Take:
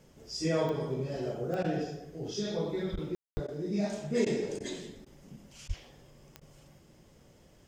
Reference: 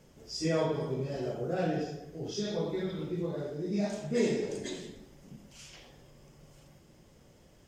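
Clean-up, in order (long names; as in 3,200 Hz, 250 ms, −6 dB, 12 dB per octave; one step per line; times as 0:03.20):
click removal
0:02.92–0:03.04: high-pass filter 140 Hz 24 dB per octave
0:03.33–0:03.45: high-pass filter 140 Hz 24 dB per octave
0:05.67–0:05.79: high-pass filter 140 Hz 24 dB per octave
ambience match 0:03.15–0:03.37
repair the gap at 0:01.63/0:02.96/0:03.47/0:04.25/0:04.59/0:05.05/0:05.68/0:06.40, 12 ms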